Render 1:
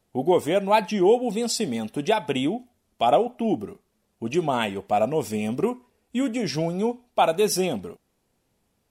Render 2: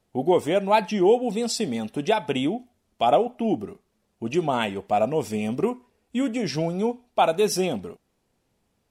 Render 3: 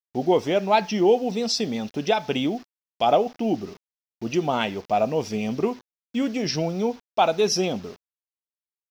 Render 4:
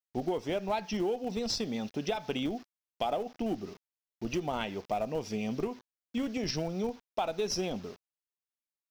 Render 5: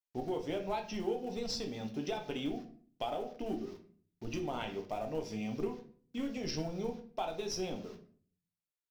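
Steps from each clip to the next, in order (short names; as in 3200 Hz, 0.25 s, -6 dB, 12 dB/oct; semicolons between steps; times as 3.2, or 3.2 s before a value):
high shelf 11000 Hz -8 dB
requantised 8-bit, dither none; resonant high shelf 6900 Hz -8 dB, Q 3
in parallel at -12 dB: Schmitt trigger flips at -19 dBFS; on the sum: compressor, threshold -23 dBFS, peak gain reduction 10 dB; gain -5.5 dB
shoebox room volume 44 m³, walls mixed, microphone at 0.44 m; gain -6.5 dB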